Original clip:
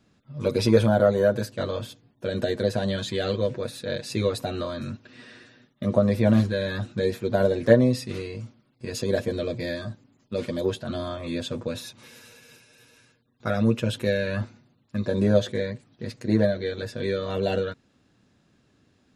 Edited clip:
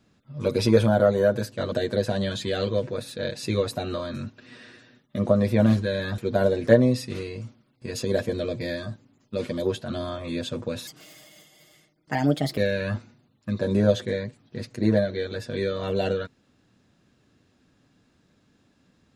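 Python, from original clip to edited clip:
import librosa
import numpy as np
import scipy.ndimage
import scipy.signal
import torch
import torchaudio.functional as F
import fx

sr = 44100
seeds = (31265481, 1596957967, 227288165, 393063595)

y = fx.edit(x, sr, fx.cut(start_s=1.72, length_s=0.67),
    fx.cut(start_s=6.85, length_s=0.32),
    fx.speed_span(start_s=11.86, length_s=2.18, speed=1.28), tone=tone)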